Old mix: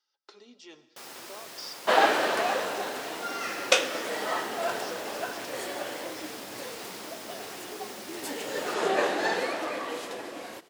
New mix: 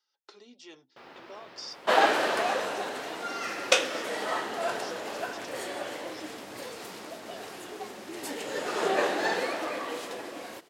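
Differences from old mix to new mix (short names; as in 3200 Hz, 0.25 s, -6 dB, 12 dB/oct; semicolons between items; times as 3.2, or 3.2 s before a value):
speech +3.5 dB; first sound: add air absorption 340 m; reverb: off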